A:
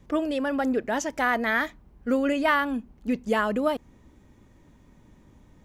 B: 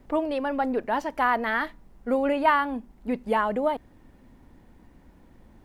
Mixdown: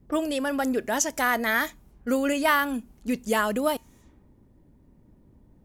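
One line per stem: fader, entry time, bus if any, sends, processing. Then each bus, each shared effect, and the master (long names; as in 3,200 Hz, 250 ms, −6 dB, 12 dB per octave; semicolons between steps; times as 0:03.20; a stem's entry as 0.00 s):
+1.0 dB, 0.00 s, no send, low-pass that shuts in the quiet parts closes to 320 Hz, open at −34.5 dBFS; high-shelf EQ 5,300 Hz +9 dB
−14.0 dB, 0.00 s, no send, no processing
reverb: not used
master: high-shelf EQ 5,200 Hz +11 dB; tuned comb filter 130 Hz, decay 0.27 s, harmonics odd, mix 30%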